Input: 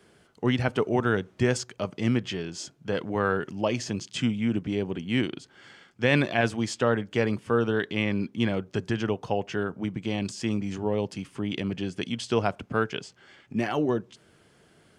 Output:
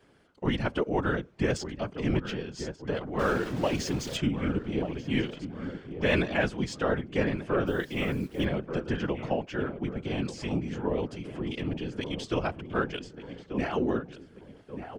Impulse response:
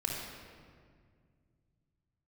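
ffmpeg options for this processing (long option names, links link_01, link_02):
-filter_complex "[0:a]asettb=1/sr,asplit=3[link_01][link_02][link_03];[link_01]atrim=end=3.194[link_04];[link_02]atrim=start=3.19:end=4.17,asetpts=PTS-STARTPTS,afade=type=in:duration=0.004:curve=qsin,afade=type=out:start_time=0.976:duration=0.004:curve=qsin,aeval=exprs='val(0)+0.5*0.0355*sgn(val(0))':channel_layout=same[link_05];[link_03]atrim=start=4.166[link_06];[link_04][link_05]acrossfade=duration=0.004:curve1=hsin:curve2=qsin[link_07];[link_07][link_06]acrossfade=duration=0.004:curve1=qsin:curve2=hsin,asplit=2[link_08][link_09];[link_09]adynamicsmooth=sensitivity=4:basefreq=6200,volume=2dB[link_10];[link_08][link_10]amix=inputs=2:normalize=0,asettb=1/sr,asplit=3[link_11][link_12][link_13];[link_11]atrim=end=10.254[link_14];[link_12]atrim=start=10.25:end=10.9,asetpts=PTS-STARTPTS,afade=type=in:duration=0.004:curve=qsin,afade=type=out:start_time=0.646:duration=0.004:curve=qsin,asplit=2[link_15][link_16];[link_16]adelay=16,volume=-8dB[link_17];[link_15][link_17]amix=inputs=2:normalize=0,atrim=end_sample=28665[link_18];[link_13]atrim=start=10.896[link_19];[link_14][link_18]acrossfade=duration=0.004:curve1=hsin:curve2=qsin[link_20];[link_20][link_19]acrossfade=duration=0.004:curve1=qsin:curve2=hsin,asplit=2[link_21][link_22];[link_22]adelay=1185,lowpass=frequency=1600:poles=1,volume=-10dB,asplit=2[link_23][link_24];[link_24]adelay=1185,lowpass=frequency=1600:poles=1,volume=0.49,asplit=2[link_25][link_26];[link_26]adelay=1185,lowpass=frequency=1600:poles=1,volume=0.49,asplit=2[link_27][link_28];[link_28]adelay=1185,lowpass=frequency=1600:poles=1,volume=0.49,asplit=2[link_29][link_30];[link_30]adelay=1185,lowpass=frequency=1600:poles=1,volume=0.49[link_31];[link_21][link_23][link_25][link_27][link_29][link_31]amix=inputs=6:normalize=0,asettb=1/sr,asplit=3[link_32][link_33][link_34];[link_32]atrim=end=7.674[link_35];[link_33]atrim=start=7.67:end=8.45,asetpts=PTS-STARTPTS,afade=type=in:duration=0.004:curve=qsin,afade=type=out:start_time=0.776:duration=0.004:curve=qsin,acrusher=bits=8:dc=4:mix=0:aa=0.000001[link_36];[link_34]atrim=start=8.446[link_37];[link_35][link_36]acrossfade=duration=0.004:curve1=hsin:curve2=qsin[link_38];[link_38][link_37]acrossfade=duration=0.004:curve1=qsin:curve2=hsin,afftfilt=real='hypot(re,im)*cos(2*PI*random(0))':imag='hypot(re,im)*sin(2*PI*random(1))':win_size=512:overlap=0.75,volume=-4dB"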